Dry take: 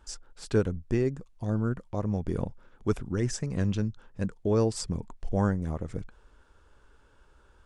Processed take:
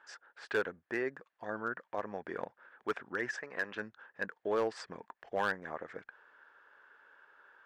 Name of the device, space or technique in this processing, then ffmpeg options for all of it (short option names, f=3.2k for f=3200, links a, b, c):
megaphone: -filter_complex "[0:a]asettb=1/sr,asplit=3[a][b][c];[a]atrim=end=3.364[d];[b]atrim=start=3.36:end=3.77,asetpts=PTS-STARTPTS,afade=t=in:d=0.004:c=qsin,afade=t=out:st=0.406:d=0.004:c=qsin,bass=f=250:g=-10,treble=f=4k:g=-6[e];[c]atrim=start=3.766[f];[d][e]acrossfade=d=0.004:c1=hsin:c2=qsin[g];[g][f]acrossfade=d=0.004:c1=qsin:c2=hsin,highpass=630,lowpass=2.5k,equalizer=f=1.7k:t=o:w=0.43:g=11.5,asoftclip=type=hard:threshold=-25.5dB,volume=1.5dB"